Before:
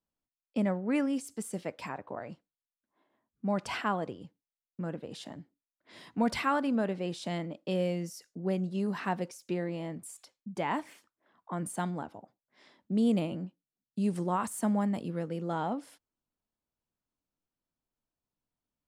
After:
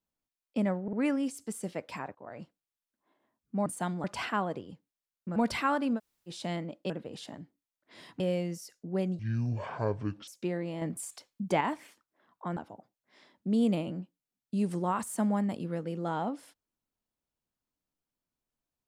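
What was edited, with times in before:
0.83 s: stutter 0.05 s, 3 plays
2.05–2.31 s: fade in, from -24 dB
4.88–6.18 s: move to 7.72 s
6.79–7.11 s: room tone, crossfade 0.06 s
8.71–9.34 s: speed 58%
9.88–10.67 s: gain +6 dB
11.63–12.01 s: move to 3.56 s

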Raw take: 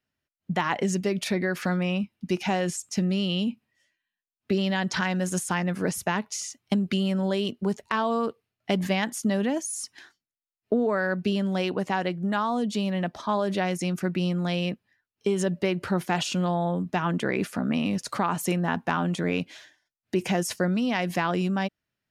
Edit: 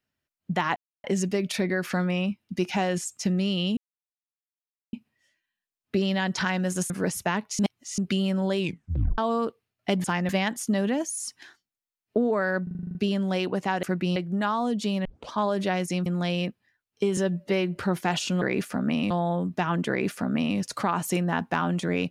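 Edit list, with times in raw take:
0.76 s: insert silence 0.28 s
3.49 s: insert silence 1.16 s
5.46–5.71 s: move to 8.85 s
6.40–6.79 s: reverse
7.39 s: tape stop 0.60 s
11.19 s: stutter 0.04 s, 9 plays
12.96 s: tape start 0.26 s
13.97–14.30 s: move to 12.07 s
15.41–15.80 s: stretch 1.5×
17.24–17.93 s: copy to 16.46 s

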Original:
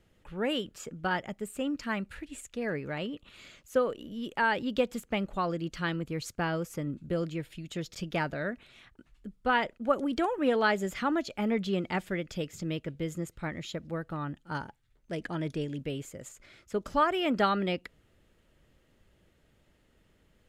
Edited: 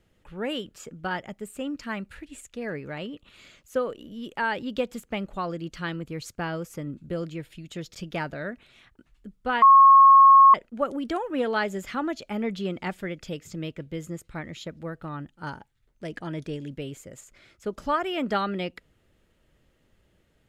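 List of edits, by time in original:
9.62 s: add tone 1.09 kHz -9.5 dBFS 0.92 s

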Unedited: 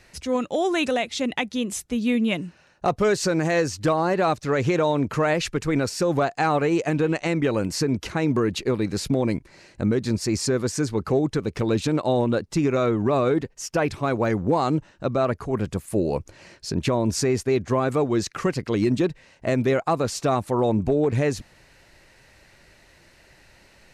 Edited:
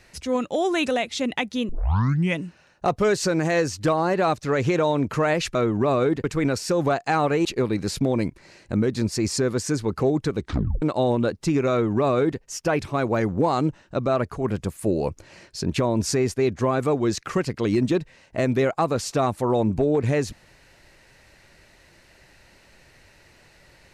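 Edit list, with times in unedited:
1.69 s: tape start 0.70 s
6.76–8.54 s: delete
11.46 s: tape stop 0.45 s
12.80–13.49 s: copy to 5.55 s

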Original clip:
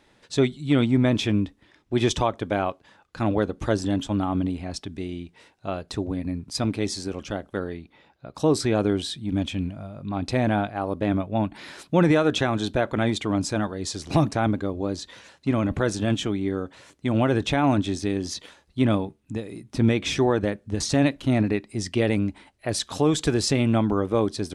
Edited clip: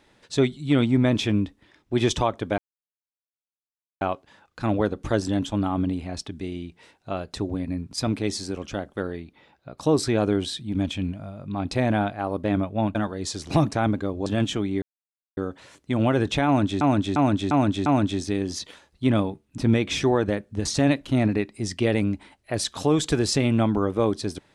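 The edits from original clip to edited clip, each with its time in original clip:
2.58 s: insert silence 1.43 s
11.52–13.55 s: delete
14.86–15.96 s: delete
16.52 s: insert silence 0.55 s
17.61–17.96 s: loop, 5 plays
19.33–19.73 s: delete

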